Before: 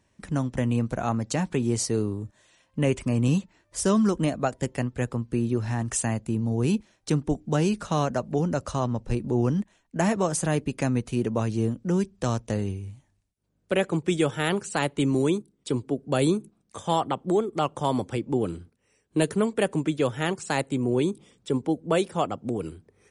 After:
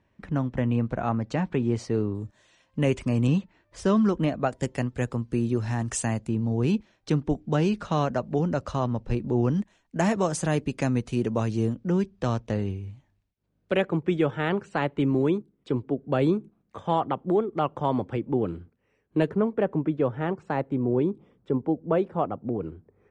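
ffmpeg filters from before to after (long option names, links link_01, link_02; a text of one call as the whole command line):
ffmpeg -i in.wav -af "asetnsamples=nb_out_samples=441:pad=0,asendcmd='2.15 lowpass f 6300;3.27 lowpass f 3400;4.51 lowpass f 8100;6.28 lowpass f 4200;9.54 lowpass f 7000;11.74 lowpass f 3900;13.82 lowpass f 2200;19.29 lowpass f 1300',lowpass=2700" out.wav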